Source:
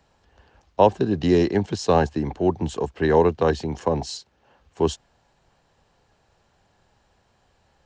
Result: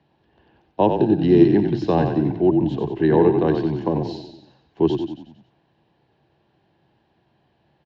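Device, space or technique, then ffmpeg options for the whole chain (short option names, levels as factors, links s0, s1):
frequency-shifting delay pedal into a guitar cabinet: -filter_complex "[0:a]asplit=7[s0][s1][s2][s3][s4][s5][s6];[s1]adelay=92,afreqshift=-34,volume=0.501[s7];[s2]adelay=184,afreqshift=-68,volume=0.26[s8];[s3]adelay=276,afreqshift=-102,volume=0.135[s9];[s4]adelay=368,afreqshift=-136,volume=0.0708[s10];[s5]adelay=460,afreqshift=-170,volume=0.0367[s11];[s6]adelay=552,afreqshift=-204,volume=0.0191[s12];[s0][s7][s8][s9][s10][s11][s12]amix=inputs=7:normalize=0,highpass=100,equalizer=f=140:t=q:w=4:g=9,equalizer=f=210:t=q:w=4:g=3,equalizer=f=330:t=q:w=4:g=10,equalizer=f=510:t=q:w=4:g=-4,equalizer=f=1300:t=q:w=4:g=-9,equalizer=f=2200:t=q:w=4:g=-3,lowpass=f=3800:w=0.5412,lowpass=f=3800:w=1.3066,volume=0.841"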